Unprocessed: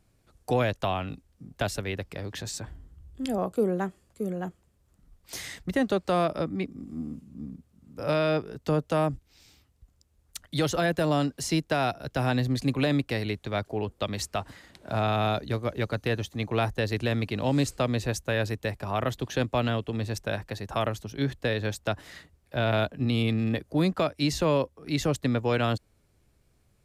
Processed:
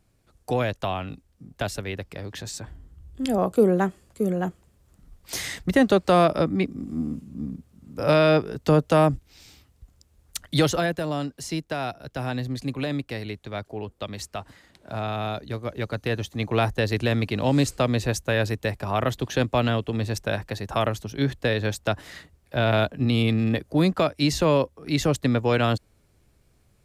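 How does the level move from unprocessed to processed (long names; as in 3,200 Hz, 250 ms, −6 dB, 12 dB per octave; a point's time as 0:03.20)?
0:02.65 +0.5 dB
0:03.58 +7 dB
0:10.57 +7 dB
0:11.04 −3 dB
0:15.39 −3 dB
0:16.54 +4 dB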